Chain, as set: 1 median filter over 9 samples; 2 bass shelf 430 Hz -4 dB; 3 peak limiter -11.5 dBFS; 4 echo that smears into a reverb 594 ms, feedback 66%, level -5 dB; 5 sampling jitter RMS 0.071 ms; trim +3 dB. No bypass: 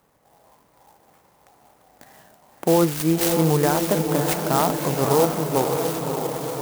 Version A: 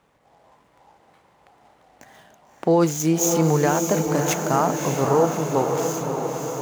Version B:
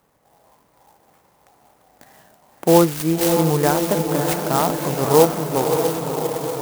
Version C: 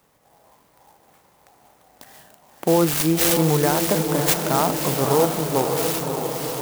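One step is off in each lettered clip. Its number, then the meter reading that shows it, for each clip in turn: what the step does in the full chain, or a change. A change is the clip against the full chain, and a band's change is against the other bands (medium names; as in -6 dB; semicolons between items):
5, 4 kHz band -4.5 dB; 3, crest factor change +2.0 dB; 1, 4 kHz band +4.0 dB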